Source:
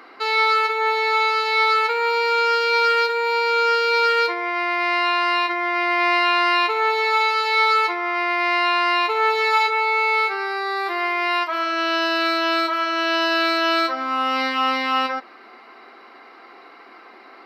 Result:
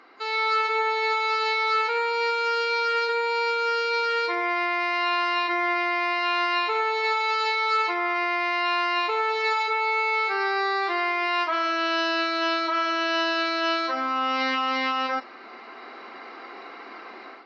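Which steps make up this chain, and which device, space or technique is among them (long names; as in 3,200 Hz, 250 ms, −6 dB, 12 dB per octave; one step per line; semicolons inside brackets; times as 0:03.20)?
low-bitrate web radio (automatic gain control gain up to 11.5 dB; brickwall limiter −9.5 dBFS, peak gain reduction 8 dB; level −8 dB; AAC 24 kbit/s 16,000 Hz)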